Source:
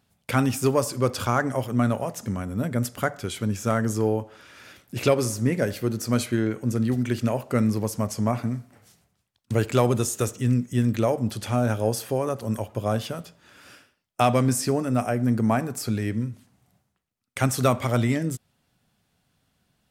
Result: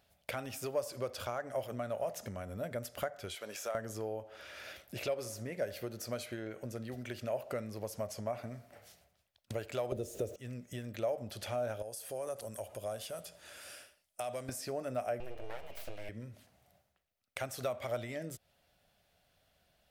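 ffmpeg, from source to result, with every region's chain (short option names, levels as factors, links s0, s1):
-filter_complex "[0:a]asettb=1/sr,asplit=3[s0][s1][s2];[s0]atrim=end=3.354[s3];[s1]atrim=start=3.35:end=3.75,asetpts=PTS-STARTPTS,afade=t=in:d=0.004:c=qsin,afade=t=out:st=0.396:d=0.004:c=qsin,highpass=520,acompressor=threshold=0.0251:ratio=2.5:attack=3.2:release=140:knee=1:detection=peak[s4];[s2]atrim=start=3.746[s5];[s3][s4]acrossfade=d=0.004:c1=hsin:c2=qsin[s6];[s6][s5]acrossfade=d=0.004:c1=qsin:c2=hsin,asettb=1/sr,asplit=3[s7][s8][s9];[s7]atrim=end=9.924[s10];[s8]atrim=start=9.92:end=10.36,asetpts=PTS-STARTPTS,afade=t=in:d=0.004:c=qsin,afade=t=out:st=0.436:d=0.004:c=qsin,aeval=exprs='val(0)+0.5*0.02*sgn(val(0))':c=same,lowshelf=f=710:t=q:w=1.5:g=12.5[s11];[s9]atrim=start=10.356[s12];[s10][s11]acrossfade=d=0.004:c1=hsin:c2=qsin[s13];[s13][s12]acrossfade=d=0.004:c1=qsin:c2=hsin,asettb=1/sr,asplit=3[s14][s15][s16];[s14]atrim=end=11.824[s17];[s15]atrim=start=11.82:end=14.49,asetpts=PTS-STARTPTS,afade=t=in:d=0.004:c=qsin,afade=t=out:st=2.666:d=0.004:c=qsin,equalizer=f=9400:t=o:w=1.1:g=14.5,acompressor=threshold=0.00501:ratio=2:attack=3.2:release=140:knee=1:detection=peak[s18];[s16]atrim=start=14.486[s19];[s17][s18]acrossfade=d=0.004:c1=hsin:c2=qsin[s20];[s20][s19]acrossfade=d=0.004:c1=qsin:c2=hsin,asettb=1/sr,asplit=3[s21][s22][s23];[s21]atrim=end=15.204[s24];[s22]atrim=start=15.2:end=16.09,asetpts=PTS-STARTPTS,afade=t=in:d=0.004:c=qsin,afade=t=out:st=0.886:d=0.004:c=qsin,aeval=exprs='val(0)+0.00562*sin(2*PI*2600*n/s)':c=same,bandreject=f=50:t=h:w=6,bandreject=f=100:t=h:w=6,bandreject=f=150:t=h:w=6,bandreject=f=200:t=h:w=6,bandreject=f=250:t=h:w=6,bandreject=f=300:t=h:w=6,bandreject=f=350:t=h:w=6,bandreject=f=400:t=h:w=6,bandreject=f=450:t=h:w=6,aeval=exprs='abs(val(0))':c=same[s25];[s23]atrim=start=16.086[s26];[s24][s25]acrossfade=d=0.004:c1=hsin:c2=qsin[s27];[s27][s26]acrossfade=d=0.004:c1=qsin:c2=hsin,equalizer=f=125:t=o:w=1:g=-9,equalizer=f=250:t=o:w=1:g=-10,equalizer=f=500:t=o:w=1:g=-6,equalizer=f=1000:t=o:w=1:g=-7,equalizer=f=8000:t=o:w=1:g=-6,acompressor=threshold=0.00794:ratio=6,equalizer=f=600:t=o:w=0.75:g=14,volume=1.12"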